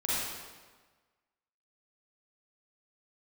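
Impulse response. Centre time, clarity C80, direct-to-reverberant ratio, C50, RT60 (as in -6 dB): 119 ms, -1.5 dB, -9.0 dB, -5.5 dB, 1.4 s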